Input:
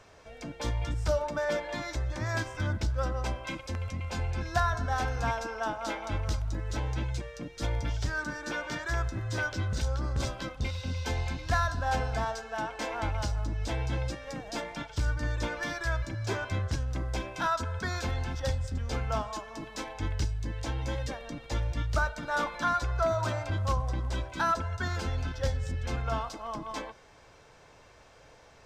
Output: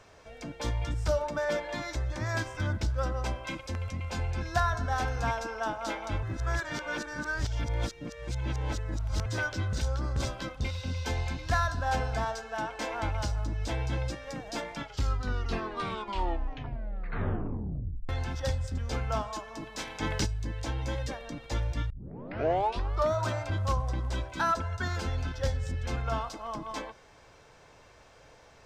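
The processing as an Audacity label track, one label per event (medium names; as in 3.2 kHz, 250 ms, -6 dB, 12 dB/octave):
6.230000	9.260000	reverse
14.730000	14.730000	tape stop 3.36 s
19.780000	20.250000	spectral peaks clipped ceiling under each frame's peak by 15 dB
21.900000	21.900000	tape start 1.25 s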